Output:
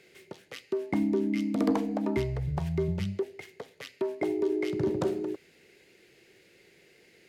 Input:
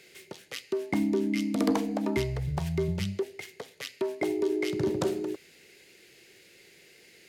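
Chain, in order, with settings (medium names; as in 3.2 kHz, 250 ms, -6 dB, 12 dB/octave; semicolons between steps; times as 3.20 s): treble shelf 2.6 kHz -9.5 dB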